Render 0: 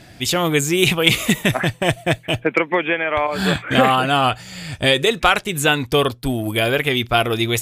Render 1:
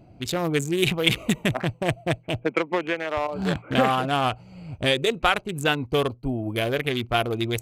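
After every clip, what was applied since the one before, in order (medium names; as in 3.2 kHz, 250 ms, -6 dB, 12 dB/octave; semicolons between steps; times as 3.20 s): local Wiener filter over 25 samples; trim -5 dB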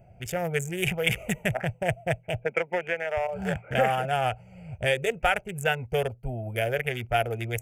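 static phaser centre 1.1 kHz, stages 6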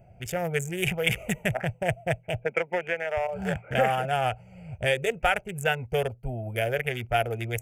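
no audible change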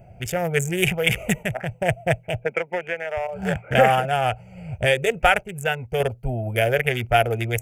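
random-step tremolo; trim +7.5 dB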